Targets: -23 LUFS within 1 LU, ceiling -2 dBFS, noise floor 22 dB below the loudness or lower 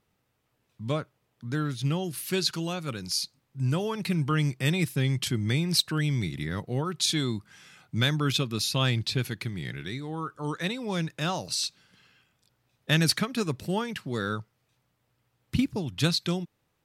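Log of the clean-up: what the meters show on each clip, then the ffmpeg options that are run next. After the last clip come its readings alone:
loudness -28.5 LUFS; peak level -12.5 dBFS; loudness target -23.0 LUFS
-> -af "volume=1.88"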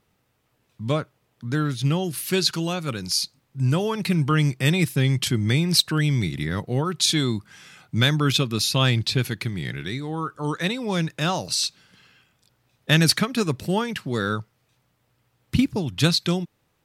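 loudness -23.0 LUFS; peak level -7.0 dBFS; noise floor -69 dBFS

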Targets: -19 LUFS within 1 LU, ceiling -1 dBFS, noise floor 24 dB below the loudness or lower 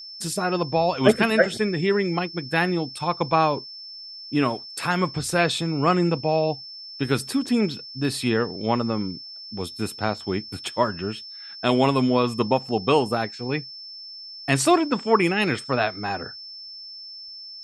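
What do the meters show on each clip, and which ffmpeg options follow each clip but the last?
steady tone 5.3 kHz; tone level -37 dBFS; loudness -23.5 LUFS; peak level -3.0 dBFS; loudness target -19.0 LUFS
-> -af "bandreject=f=5300:w=30"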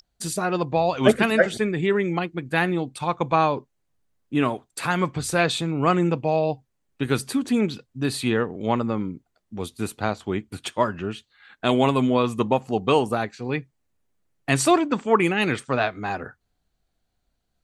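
steady tone not found; loudness -23.5 LUFS; peak level -3.0 dBFS; loudness target -19.0 LUFS
-> -af "volume=1.68,alimiter=limit=0.891:level=0:latency=1"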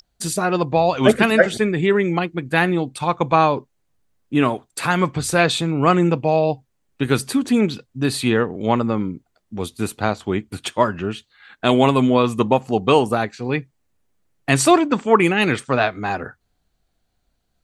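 loudness -19.0 LUFS; peak level -1.0 dBFS; noise floor -70 dBFS

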